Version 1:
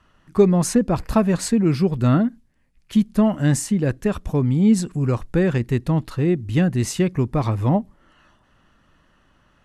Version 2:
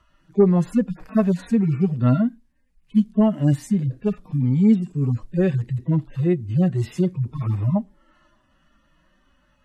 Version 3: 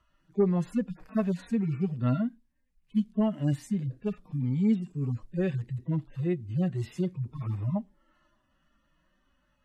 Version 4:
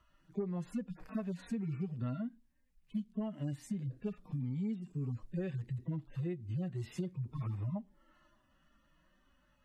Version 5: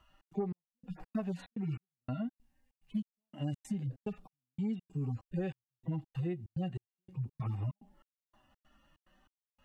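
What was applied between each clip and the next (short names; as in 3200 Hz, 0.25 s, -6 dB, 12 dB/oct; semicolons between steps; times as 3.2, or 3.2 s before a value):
median-filter separation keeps harmonic
dynamic EQ 2900 Hz, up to +4 dB, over -43 dBFS, Q 0.81; gain -9 dB
compressor 6:1, threshold -35 dBFS, peak gain reduction 15 dB
small resonant body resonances 790/2800 Hz, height 13 dB, ringing for 40 ms; step gate "xx.xx...xx.x" 144 bpm -60 dB; gain +2 dB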